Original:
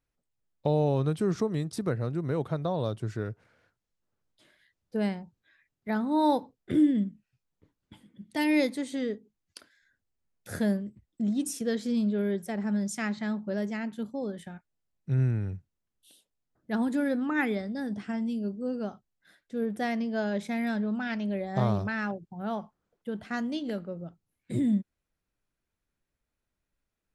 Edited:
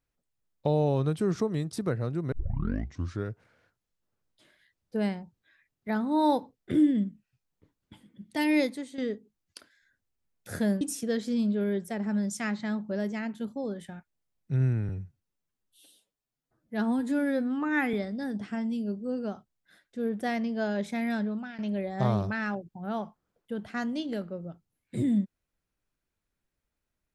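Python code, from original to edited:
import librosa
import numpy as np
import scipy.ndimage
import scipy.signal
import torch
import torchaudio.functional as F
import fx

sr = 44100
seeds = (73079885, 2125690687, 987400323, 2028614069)

y = fx.edit(x, sr, fx.tape_start(start_s=2.32, length_s=0.93),
    fx.fade_out_to(start_s=8.58, length_s=0.4, floor_db=-10.5),
    fx.cut(start_s=10.81, length_s=0.58),
    fx.stretch_span(start_s=15.47, length_s=2.03, factor=1.5),
    fx.fade_out_to(start_s=20.79, length_s=0.36, floor_db=-16.0), tone=tone)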